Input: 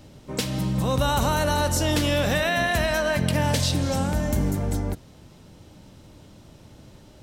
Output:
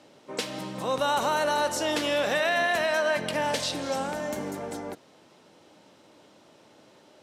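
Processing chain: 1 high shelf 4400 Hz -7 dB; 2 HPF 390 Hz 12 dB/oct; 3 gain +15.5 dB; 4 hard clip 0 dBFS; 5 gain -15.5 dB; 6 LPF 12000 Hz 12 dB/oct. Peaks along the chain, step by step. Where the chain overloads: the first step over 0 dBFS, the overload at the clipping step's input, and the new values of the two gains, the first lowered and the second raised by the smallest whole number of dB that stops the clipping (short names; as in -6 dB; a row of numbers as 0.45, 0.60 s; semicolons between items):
-11.0, -12.5, +3.0, 0.0, -15.5, -15.0 dBFS; step 3, 3.0 dB; step 3 +12.5 dB, step 5 -12.5 dB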